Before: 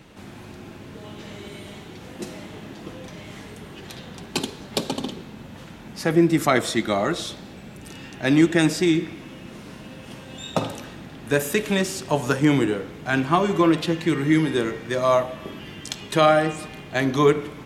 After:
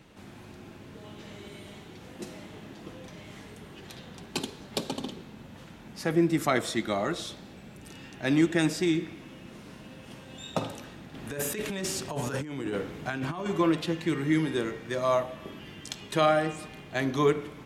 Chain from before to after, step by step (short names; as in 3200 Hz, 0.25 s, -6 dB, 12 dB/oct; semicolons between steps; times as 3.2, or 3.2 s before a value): 11.14–13.46 negative-ratio compressor -26 dBFS, ratio -1; gain -6.5 dB